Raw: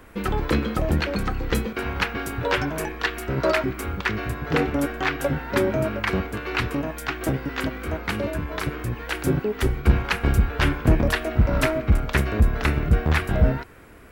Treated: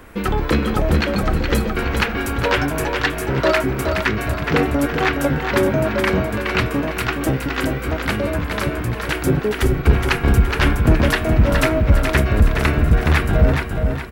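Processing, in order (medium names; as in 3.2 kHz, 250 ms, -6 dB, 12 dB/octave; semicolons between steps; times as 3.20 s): feedback delay 419 ms, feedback 38%, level -6 dB; in parallel at -8 dB: saturation -20.5 dBFS, distortion -8 dB; on the sum: trim +2.5 dB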